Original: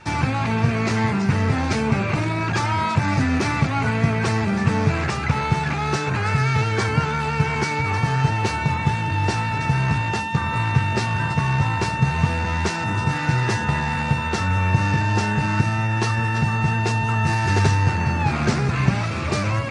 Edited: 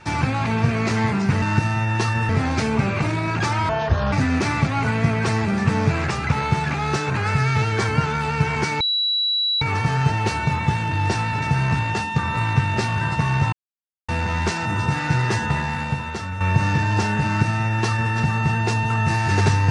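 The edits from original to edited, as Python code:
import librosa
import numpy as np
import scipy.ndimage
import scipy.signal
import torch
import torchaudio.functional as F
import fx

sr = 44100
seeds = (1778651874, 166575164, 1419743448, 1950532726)

y = fx.edit(x, sr, fx.speed_span(start_s=2.82, length_s=0.3, speed=0.69),
    fx.insert_tone(at_s=7.8, length_s=0.81, hz=3920.0, db=-18.0),
    fx.silence(start_s=11.71, length_s=0.56),
    fx.fade_out_to(start_s=13.62, length_s=0.97, floor_db=-9.5),
    fx.duplicate(start_s=15.44, length_s=0.87, to_s=1.42), tone=tone)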